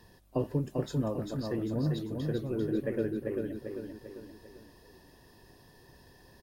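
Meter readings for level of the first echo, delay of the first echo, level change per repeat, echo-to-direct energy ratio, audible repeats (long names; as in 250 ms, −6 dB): −4.5 dB, 395 ms, −6.5 dB, −3.5 dB, 4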